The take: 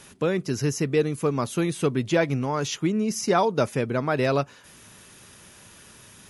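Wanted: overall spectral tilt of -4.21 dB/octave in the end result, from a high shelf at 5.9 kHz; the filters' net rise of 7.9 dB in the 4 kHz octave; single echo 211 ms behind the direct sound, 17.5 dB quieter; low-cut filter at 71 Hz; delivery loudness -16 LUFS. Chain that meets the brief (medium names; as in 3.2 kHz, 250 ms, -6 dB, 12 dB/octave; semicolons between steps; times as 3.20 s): high-pass 71 Hz; peaking EQ 4 kHz +8 dB; treble shelf 5.9 kHz +5.5 dB; delay 211 ms -17.5 dB; trim +8 dB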